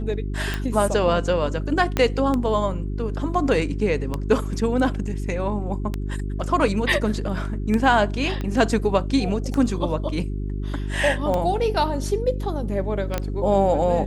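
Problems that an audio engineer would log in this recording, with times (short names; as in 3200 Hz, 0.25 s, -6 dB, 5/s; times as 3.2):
hum 50 Hz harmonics 8 -27 dBFS
tick 33 1/3 rpm -12 dBFS
1.97 pop -7 dBFS
8.41 pop -16 dBFS
13.18 pop -10 dBFS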